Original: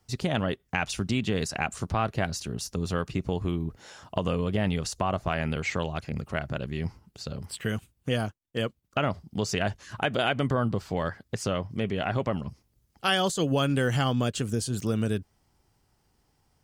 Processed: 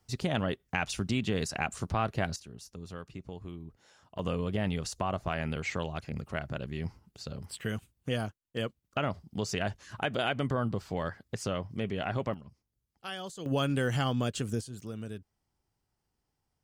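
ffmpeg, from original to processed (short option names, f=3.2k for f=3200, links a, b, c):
-af "asetnsamples=n=441:p=0,asendcmd='2.36 volume volume -14dB;4.19 volume volume -4.5dB;12.34 volume volume -15dB;13.46 volume volume -4dB;14.61 volume volume -13dB',volume=-3dB"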